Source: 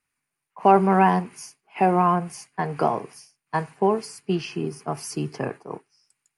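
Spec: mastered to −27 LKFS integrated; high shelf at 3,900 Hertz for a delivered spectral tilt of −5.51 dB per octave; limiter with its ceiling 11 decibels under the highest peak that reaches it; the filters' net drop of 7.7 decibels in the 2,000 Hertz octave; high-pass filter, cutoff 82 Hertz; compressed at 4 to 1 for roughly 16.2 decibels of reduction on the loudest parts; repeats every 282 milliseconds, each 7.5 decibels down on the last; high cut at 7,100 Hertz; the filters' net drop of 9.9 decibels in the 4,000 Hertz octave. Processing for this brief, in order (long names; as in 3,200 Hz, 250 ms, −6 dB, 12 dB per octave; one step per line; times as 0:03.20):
high-pass filter 82 Hz
low-pass filter 7,100 Hz
parametric band 2,000 Hz −7.5 dB
high-shelf EQ 3,900 Hz −6.5 dB
parametric band 4,000 Hz −6.5 dB
downward compressor 4 to 1, threshold −32 dBFS
brickwall limiter −27.5 dBFS
repeating echo 282 ms, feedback 42%, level −7.5 dB
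level +13 dB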